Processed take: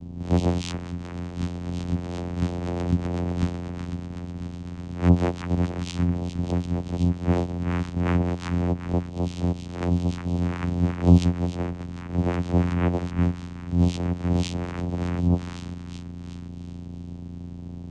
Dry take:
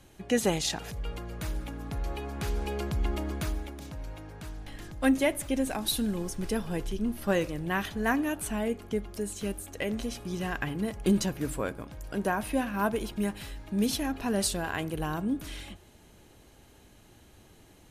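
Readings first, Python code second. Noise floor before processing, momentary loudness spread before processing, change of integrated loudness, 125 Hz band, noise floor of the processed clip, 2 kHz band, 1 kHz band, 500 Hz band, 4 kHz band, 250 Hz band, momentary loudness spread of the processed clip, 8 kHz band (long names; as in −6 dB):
−56 dBFS, 14 LU, +5.0 dB, +13.5 dB, −37 dBFS, −4.5 dB, +0.5 dB, +0.5 dB, −4.0 dB, +5.0 dB, 14 LU, −9.0 dB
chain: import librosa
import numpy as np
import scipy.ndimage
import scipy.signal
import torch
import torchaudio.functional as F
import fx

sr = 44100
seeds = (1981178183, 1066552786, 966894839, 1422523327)

p1 = fx.spec_swells(x, sr, rise_s=0.31)
p2 = fx.high_shelf(p1, sr, hz=4900.0, db=10.5)
p3 = fx.rider(p2, sr, range_db=5, speed_s=2.0)
p4 = p3 + fx.echo_stepped(p3, sr, ms=373, hz=1500.0, octaves=0.7, feedback_pct=70, wet_db=-3.0, dry=0)
p5 = fx.add_hum(p4, sr, base_hz=60, snr_db=10)
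p6 = fx.vocoder(p5, sr, bands=4, carrier='saw', carrier_hz=87.5)
y = fx.low_shelf(p6, sr, hz=250.0, db=7.0)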